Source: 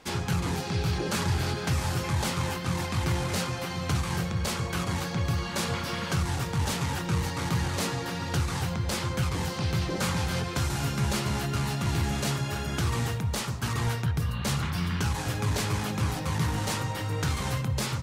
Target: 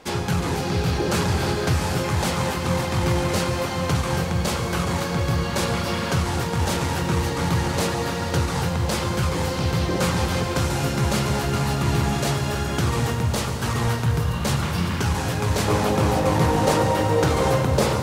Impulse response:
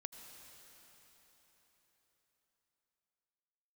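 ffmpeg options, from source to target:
-filter_complex "[0:a]asetnsamples=nb_out_samples=441:pad=0,asendcmd='15.68 equalizer g 14',equalizer=frequency=510:width_type=o:width=1.8:gain=5[link_01];[1:a]atrim=start_sample=2205[link_02];[link_01][link_02]afir=irnorm=-1:irlink=0,volume=8.5dB"

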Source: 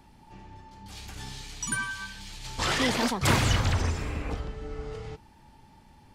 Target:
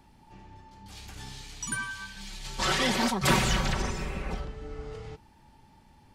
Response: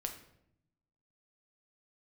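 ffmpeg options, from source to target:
-filter_complex "[0:a]asettb=1/sr,asplit=3[link_01][link_02][link_03];[link_01]atrim=end=2.164[link_04];[link_02]atrim=start=2.16:end=4.45,asetpts=PTS-STARTPTS,afade=type=in:duration=0.004:curve=qsin,afade=type=out:start_time=2.286:duration=0.004:curve=qsin,aecho=1:1:5.3:0.98,atrim=end_sample=100989[link_05];[link_03]atrim=start=4.446[link_06];[link_04][link_05]acrossfade=duration=0.004:curve1=hsin:curve2=qsin[link_07];[link_07][link_06]acrossfade=duration=0.004:curve1=qsin:curve2=hsin,volume=-2.5dB"

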